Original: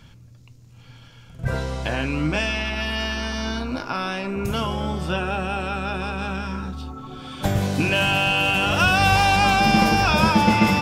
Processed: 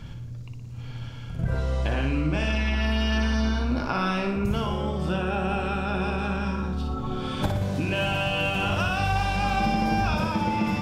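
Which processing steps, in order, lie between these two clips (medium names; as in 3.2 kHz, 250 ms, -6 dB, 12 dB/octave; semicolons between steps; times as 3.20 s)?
tilt EQ -1.5 dB/octave; compression 10:1, threshold -27 dBFS, peak gain reduction 17.5 dB; flutter echo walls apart 10.2 m, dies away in 0.61 s; trim +4 dB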